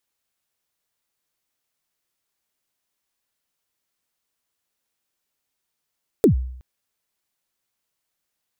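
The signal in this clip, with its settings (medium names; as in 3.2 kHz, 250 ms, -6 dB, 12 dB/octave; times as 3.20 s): kick drum length 0.37 s, from 490 Hz, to 63 Hz, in 109 ms, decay 0.69 s, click on, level -8 dB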